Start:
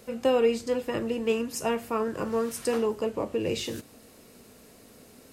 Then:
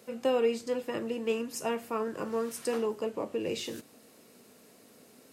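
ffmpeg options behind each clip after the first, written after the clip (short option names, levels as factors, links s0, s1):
-af "highpass=160,volume=0.631"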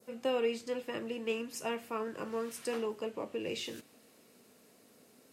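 -af "adynamicequalizer=threshold=0.00355:dfrequency=2600:dqfactor=0.92:tfrequency=2600:tqfactor=0.92:attack=5:release=100:ratio=0.375:range=2.5:mode=boostabove:tftype=bell,volume=0.562"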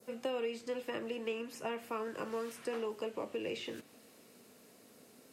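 -filter_complex "[0:a]acrossover=split=320|2700[s0][s1][s2];[s0]acompressor=threshold=0.00316:ratio=4[s3];[s1]acompressor=threshold=0.0126:ratio=4[s4];[s2]acompressor=threshold=0.00178:ratio=4[s5];[s3][s4][s5]amix=inputs=3:normalize=0,volume=1.26"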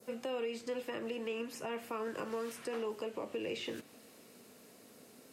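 -af "alimiter=level_in=2.37:limit=0.0631:level=0:latency=1:release=117,volume=0.422,volume=1.26"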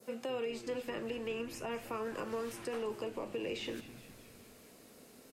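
-filter_complex "[0:a]asplit=8[s0][s1][s2][s3][s4][s5][s6][s7];[s1]adelay=207,afreqshift=-110,volume=0.178[s8];[s2]adelay=414,afreqshift=-220,volume=0.11[s9];[s3]adelay=621,afreqshift=-330,volume=0.0684[s10];[s4]adelay=828,afreqshift=-440,volume=0.0422[s11];[s5]adelay=1035,afreqshift=-550,volume=0.0263[s12];[s6]adelay=1242,afreqshift=-660,volume=0.0162[s13];[s7]adelay=1449,afreqshift=-770,volume=0.0101[s14];[s0][s8][s9][s10][s11][s12][s13][s14]amix=inputs=8:normalize=0"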